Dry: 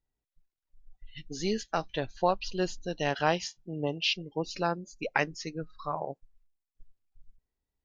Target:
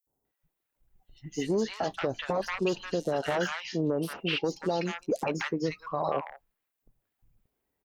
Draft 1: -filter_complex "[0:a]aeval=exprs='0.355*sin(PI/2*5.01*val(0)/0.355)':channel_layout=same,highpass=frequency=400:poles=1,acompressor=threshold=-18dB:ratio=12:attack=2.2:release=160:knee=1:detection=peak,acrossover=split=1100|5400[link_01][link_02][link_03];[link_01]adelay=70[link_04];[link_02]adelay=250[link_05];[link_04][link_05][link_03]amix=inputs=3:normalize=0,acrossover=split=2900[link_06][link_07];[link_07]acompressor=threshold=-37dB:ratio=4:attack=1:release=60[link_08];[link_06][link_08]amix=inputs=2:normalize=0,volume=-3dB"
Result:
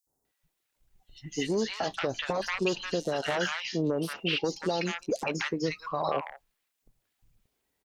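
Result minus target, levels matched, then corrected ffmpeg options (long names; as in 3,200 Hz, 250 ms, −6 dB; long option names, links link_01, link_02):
4,000 Hz band +3.0 dB
-filter_complex "[0:a]aeval=exprs='0.355*sin(PI/2*5.01*val(0)/0.355)':channel_layout=same,highpass=frequency=400:poles=1,equalizer=frequency=5200:width=0.42:gain=-10.5,acompressor=threshold=-18dB:ratio=12:attack=2.2:release=160:knee=1:detection=peak,acrossover=split=1100|5400[link_01][link_02][link_03];[link_01]adelay=70[link_04];[link_02]adelay=250[link_05];[link_04][link_05][link_03]amix=inputs=3:normalize=0,acrossover=split=2900[link_06][link_07];[link_07]acompressor=threshold=-37dB:ratio=4:attack=1:release=60[link_08];[link_06][link_08]amix=inputs=2:normalize=0,volume=-3dB"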